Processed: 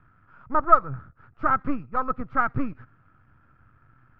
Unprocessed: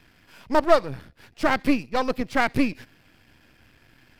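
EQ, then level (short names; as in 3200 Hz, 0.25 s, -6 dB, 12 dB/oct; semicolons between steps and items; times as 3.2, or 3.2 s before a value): synth low-pass 1300 Hz, resonance Q 13; low shelf 62 Hz +12 dB; bell 120 Hz +12 dB 1.3 oct; -11.0 dB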